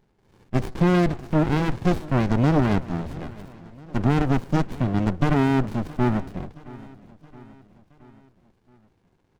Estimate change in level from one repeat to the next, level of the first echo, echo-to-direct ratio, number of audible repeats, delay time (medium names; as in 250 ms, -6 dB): -5.0 dB, -20.5 dB, -19.0 dB, 3, 671 ms